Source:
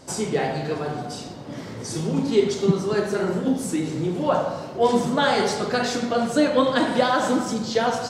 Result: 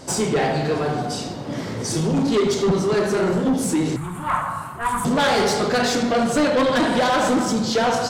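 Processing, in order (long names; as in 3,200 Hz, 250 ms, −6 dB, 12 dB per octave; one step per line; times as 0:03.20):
soft clipping −21.5 dBFS, distortion −9 dB
0:03.96–0:05.05: drawn EQ curve 100 Hz 0 dB, 530 Hz −22 dB, 1,100 Hz +7 dB, 5,400 Hz −17 dB, 8,900 Hz +9 dB
level +7 dB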